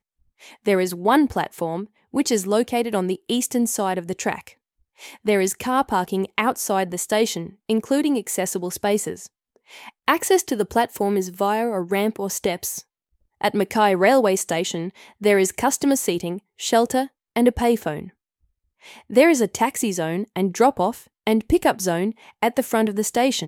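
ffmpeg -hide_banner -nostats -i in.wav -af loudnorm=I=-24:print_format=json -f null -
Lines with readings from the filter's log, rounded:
"input_i" : "-21.6",
"input_tp" : "-2.6",
"input_lra" : "3.3",
"input_thresh" : "-32.0",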